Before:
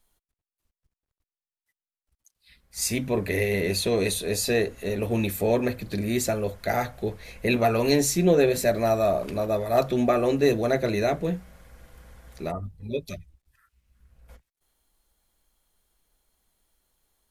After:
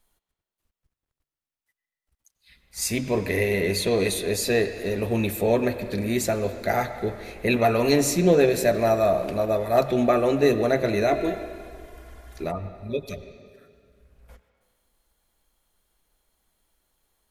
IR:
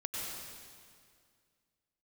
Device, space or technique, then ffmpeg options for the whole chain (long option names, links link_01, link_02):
filtered reverb send: -filter_complex "[0:a]asplit=2[link_01][link_02];[link_02]highpass=frequency=300:poles=1,lowpass=3900[link_03];[1:a]atrim=start_sample=2205[link_04];[link_03][link_04]afir=irnorm=-1:irlink=0,volume=-9dB[link_05];[link_01][link_05]amix=inputs=2:normalize=0,asettb=1/sr,asplit=3[link_06][link_07][link_08];[link_06]atrim=end=11.114[link_09];[link_07]atrim=start=11.11:end=12.44,asetpts=PTS-STARTPTS,afade=type=in:duration=0.004:curve=qsin,afade=type=out:start_time=1.326:duration=0.004:curve=qsin,aecho=1:1:2.9:0.77,atrim=end_sample=58653[link_10];[link_08]atrim=start=12.436[link_11];[link_09][link_10]acrossfade=duration=0.004:curve1=hsin:curve2=qsin[link_12];[link_12][link_11]acrossfade=duration=0.004:curve1=qsin:curve2=hsin"